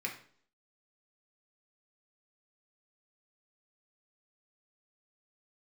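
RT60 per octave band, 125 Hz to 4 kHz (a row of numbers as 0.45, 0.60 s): 0.55, 0.60, 0.55, 0.50, 0.45, 0.50 s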